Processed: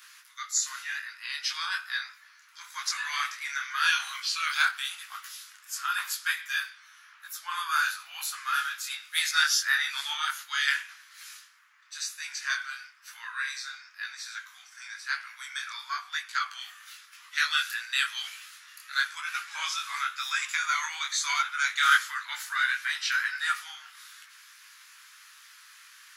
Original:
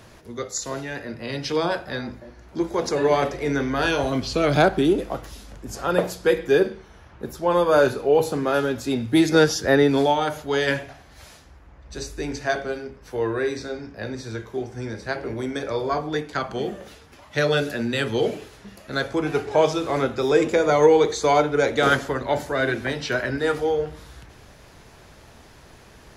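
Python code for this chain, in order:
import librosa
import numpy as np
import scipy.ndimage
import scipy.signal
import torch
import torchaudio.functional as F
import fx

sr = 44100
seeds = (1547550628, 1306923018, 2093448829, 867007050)

y = scipy.signal.sosfilt(scipy.signal.butter(8, 1200.0, 'highpass', fs=sr, output='sos'), x)
y = fx.high_shelf(y, sr, hz=10000.0, db=8.0)
y = fx.detune_double(y, sr, cents=34)
y = y * 10.0 ** (4.5 / 20.0)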